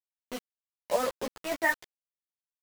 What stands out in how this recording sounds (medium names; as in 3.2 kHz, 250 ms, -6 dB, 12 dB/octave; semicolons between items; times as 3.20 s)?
chopped level 3.3 Hz, depth 65%, duty 70%; a quantiser's noise floor 6-bit, dither none; a shimmering, thickened sound